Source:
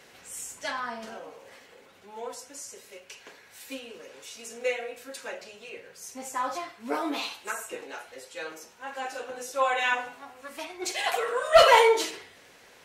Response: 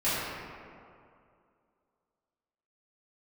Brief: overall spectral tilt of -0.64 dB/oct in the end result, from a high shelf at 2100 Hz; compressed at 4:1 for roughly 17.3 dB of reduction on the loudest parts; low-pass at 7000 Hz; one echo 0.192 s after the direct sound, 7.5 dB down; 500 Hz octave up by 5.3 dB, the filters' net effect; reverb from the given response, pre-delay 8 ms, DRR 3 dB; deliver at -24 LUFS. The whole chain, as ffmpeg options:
-filter_complex "[0:a]lowpass=7k,equalizer=f=500:t=o:g=6,highshelf=f=2.1k:g=6.5,acompressor=threshold=-29dB:ratio=4,aecho=1:1:192:0.422,asplit=2[a][b];[1:a]atrim=start_sample=2205,adelay=8[c];[b][c]afir=irnorm=-1:irlink=0,volume=-15.5dB[d];[a][d]amix=inputs=2:normalize=0,volume=8dB"

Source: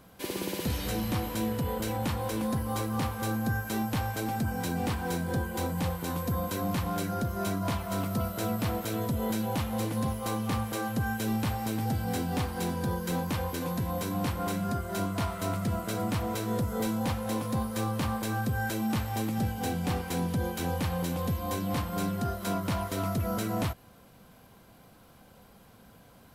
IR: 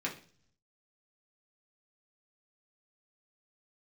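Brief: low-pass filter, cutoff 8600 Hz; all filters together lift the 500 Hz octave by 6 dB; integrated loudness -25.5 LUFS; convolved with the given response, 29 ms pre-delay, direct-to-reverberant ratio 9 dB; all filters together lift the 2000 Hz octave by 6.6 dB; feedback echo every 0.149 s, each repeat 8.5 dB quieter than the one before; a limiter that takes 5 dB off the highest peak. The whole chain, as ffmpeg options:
-filter_complex "[0:a]lowpass=8.6k,equalizer=f=500:t=o:g=6.5,equalizer=f=2k:t=o:g=8.5,alimiter=limit=-21dB:level=0:latency=1,aecho=1:1:149|298|447|596:0.376|0.143|0.0543|0.0206,asplit=2[a][b];[1:a]atrim=start_sample=2205,adelay=29[c];[b][c]afir=irnorm=-1:irlink=0,volume=-13dB[d];[a][d]amix=inputs=2:normalize=0,volume=3.5dB"

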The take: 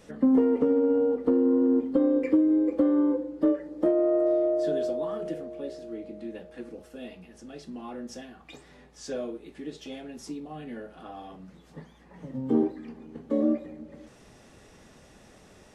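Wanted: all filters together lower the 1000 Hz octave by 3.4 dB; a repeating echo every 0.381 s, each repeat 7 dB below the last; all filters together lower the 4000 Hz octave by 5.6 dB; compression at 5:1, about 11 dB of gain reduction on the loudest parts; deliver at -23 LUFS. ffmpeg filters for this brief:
-af "equalizer=f=1k:t=o:g=-4.5,equalizer=f=4k:t=o:g=-7.5,acompressor=threshold=-31dB:ratio=5,aecho=1:1:381|762|1143|1524|1905:0.447|0.201|0.0905|0.0407|0.0183,volume=12dB"

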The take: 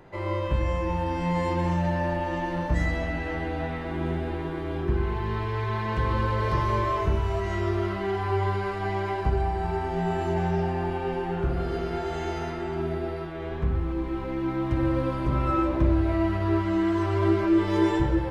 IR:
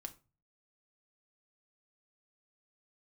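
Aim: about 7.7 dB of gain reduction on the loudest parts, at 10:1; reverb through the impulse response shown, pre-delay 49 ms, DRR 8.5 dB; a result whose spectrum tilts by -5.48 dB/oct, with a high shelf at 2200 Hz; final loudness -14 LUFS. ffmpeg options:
-filter_complex "[0:a]highshelf=f=2.2k:g=-4.5,acompressor=threshold=-25dB:ratio=10,asplit=2[a][b];[1:a]atrim=start_sample=2205,adelay=49[c];[b][c]afir=irnorm=-1:irlink=0,volume=-4dB[d];[a][d]amix=inputs=2:normalize=0,volume=16dB"

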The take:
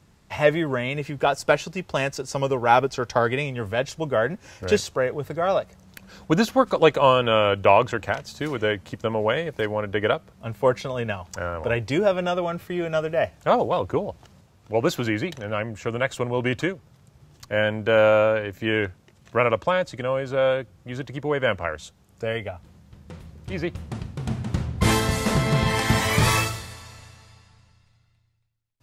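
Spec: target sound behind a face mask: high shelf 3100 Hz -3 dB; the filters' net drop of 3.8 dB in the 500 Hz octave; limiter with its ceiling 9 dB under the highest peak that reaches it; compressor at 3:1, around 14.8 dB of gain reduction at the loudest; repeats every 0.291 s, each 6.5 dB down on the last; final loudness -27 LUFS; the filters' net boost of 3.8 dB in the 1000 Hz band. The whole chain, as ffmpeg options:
-af "equalizer=f=500:t=o:g=-6.5,equalizer=f=1k:t=o:g=7,acompressor=threshold=-30dB:ratio=3,alimiter=limit=-21.5dB:level=0:latency=1,highshelf=f=3.1k:g=-3,aecho=1:1:291|582|873|1164|1455|1746:0.473|0.222|0.105|0.0491|0.0231|0.0109,volume=7.5dB"

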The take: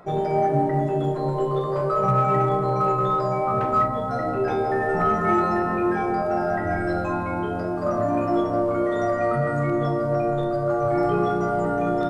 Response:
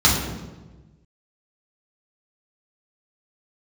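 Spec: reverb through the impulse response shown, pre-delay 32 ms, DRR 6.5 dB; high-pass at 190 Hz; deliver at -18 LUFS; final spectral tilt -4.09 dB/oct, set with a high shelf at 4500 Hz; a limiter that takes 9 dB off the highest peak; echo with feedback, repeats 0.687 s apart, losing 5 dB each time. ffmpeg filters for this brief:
-filter_complex "[0:a]highpass=190,highshelf=f=4.5k:g=3.5,alimiter=limit=-18.5dB:level=0:latency=1,aecho=1:1:687|1374|2061|2748|3435|4122|4809:0.562|0.315|0.176|0.0988|0.0553|0.031|0.0173,asplit=2[a][b];[1:a]atrim=start_sample=2205,adelay=32[c];[b][c]afir=irnorm=-1:irlink=0,volume=-27dB[d];[a][d]amix=inputs=2:normalize=0,volume=5.5dB"

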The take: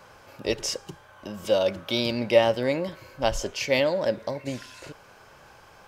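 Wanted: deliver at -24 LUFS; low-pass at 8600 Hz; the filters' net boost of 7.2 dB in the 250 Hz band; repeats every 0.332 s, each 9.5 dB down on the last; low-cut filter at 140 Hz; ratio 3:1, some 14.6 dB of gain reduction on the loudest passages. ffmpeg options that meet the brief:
-af "highpass=140,lowpass=8.6k,equalizer=f=250:t=o:g=9,acompressor=threshold=-31dB:ratio=3,aecho=1:1:332|664|996|1328:0.335|0.111|0.0365|0.012,volume=9.5dB"

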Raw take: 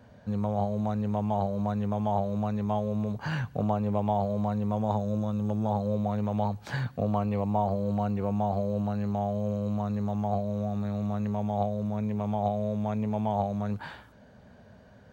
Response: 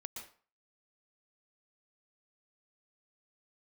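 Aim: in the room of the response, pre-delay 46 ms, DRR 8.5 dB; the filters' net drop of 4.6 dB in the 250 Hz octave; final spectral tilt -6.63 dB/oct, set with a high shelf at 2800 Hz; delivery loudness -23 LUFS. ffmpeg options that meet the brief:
-filter_complex "[0:a]equalizer=f=250:t=o:g=-6,highshelf=f=2.8k:g=-3.5,asplit=2[a][b];[1:a]atrim=start_sample=2205,adelay=46[c];[b][c]afir=irnorm=-1:irlink=0,volume=-5.5dB[d];[a][d]amix=inputs=2:normalize=0,volume=8.5dB"

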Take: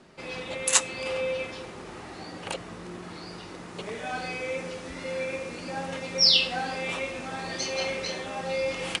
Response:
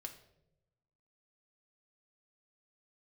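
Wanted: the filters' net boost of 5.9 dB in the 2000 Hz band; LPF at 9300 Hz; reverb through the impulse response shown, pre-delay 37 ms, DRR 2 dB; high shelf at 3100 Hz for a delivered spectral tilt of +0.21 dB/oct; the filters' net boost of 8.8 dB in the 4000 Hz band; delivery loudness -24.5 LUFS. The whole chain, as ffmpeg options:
-filter_complex "[0:a]lowpass=9.3k,equalizer=f=2k:t=o:g=3,highshelf=f=3.1k:g=4,equalizer=f=4k:t=o:g=7.5,asplit=2[a][b];[1:a]atrim=start_sample=2205,adelay=37[c];[b][c]afir=irnorm=-1:irlink=0,volume=2dB[d];[a][d]amix=inputs=2:normalize=0,volume=-6dB"

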